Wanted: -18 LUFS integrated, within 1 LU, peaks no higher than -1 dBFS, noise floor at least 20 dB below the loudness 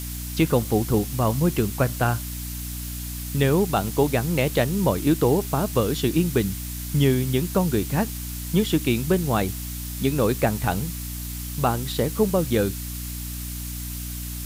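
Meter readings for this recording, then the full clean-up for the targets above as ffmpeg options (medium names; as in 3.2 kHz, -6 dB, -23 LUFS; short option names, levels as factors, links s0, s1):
hum 60 Hz; highest harmonic 300 Hz; hum level -31 dBFS; noise floor -32 dBFS; noise floor target -44 dBFS; loudness -24.0 LUFS; peak level -8.0 dBFS; loudness target -18.0 LUFS
-> -af "bandreject=f=60:t=h:w=4,bandreject=f=120:t=h:w=4,bandreject=f=180:t=h:w=4,bandreject=f=240:t=h:w=4,bandreject=f=300:t=h:w=4"
-af "afftdn=nr=12:nf=-32"
-af "volume=2"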